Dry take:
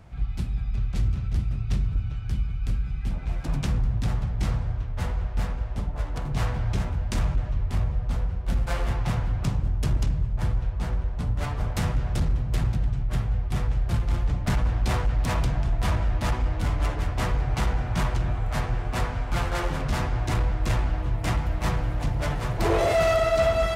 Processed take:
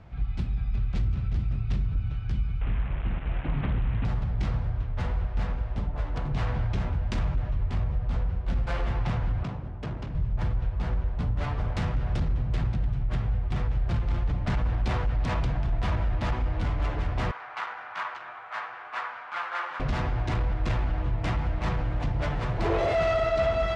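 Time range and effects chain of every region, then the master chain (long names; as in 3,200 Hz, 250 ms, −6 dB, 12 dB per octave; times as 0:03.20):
0:02.61–0:04.05: linear delta modulator 16 kbit/s, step −33.5 dBFS + highs frequency-modulated by the lows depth 0.5 ms
0:09.43–0:10.15: high-pass filter 250 Hz 6 dB per octave + high-shelf EQ 3,000 Hz −11 dB + gain into a clipping stage and back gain 26.5 dB
0:17.31–0:19.80: high-pass with resonance 1,200 Hz, resonance Q 1.6 + high-shelf EQ 3,200 Hz −11 dB
whole clip: low-pass filter 4,000 Hz 12 dB per octave; brickwall limiter −19.5 dBFS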